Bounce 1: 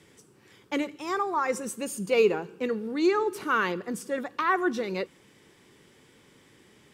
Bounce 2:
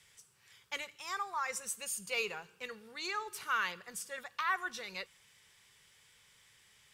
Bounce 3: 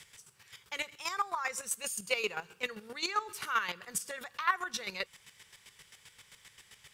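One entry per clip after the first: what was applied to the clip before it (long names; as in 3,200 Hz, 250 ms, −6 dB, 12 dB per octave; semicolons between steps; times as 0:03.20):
guitar amp tone stack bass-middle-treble 10-0-10
in parallel at +3 dB: downward compressor, threshold −43 dBFS, peak gain reduction 14.5 dB; on the sum: square-wave tremolo 7.6 Hz, depth 65%, duty 25%; level +4 dB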